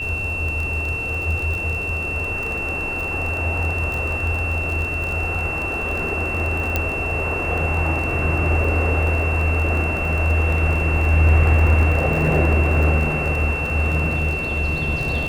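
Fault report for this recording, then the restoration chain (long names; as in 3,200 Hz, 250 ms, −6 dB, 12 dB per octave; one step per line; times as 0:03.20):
surface crackle 33 per second −25 dBFS
whistle 2,700 Hz −24 dBFS
0:06.76: click −5 dBFS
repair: click removal
notch filter 2,700 Hz, Q 30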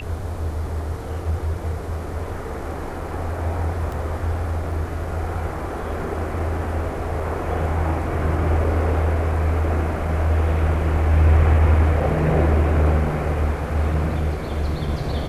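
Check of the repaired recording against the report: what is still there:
none of them is left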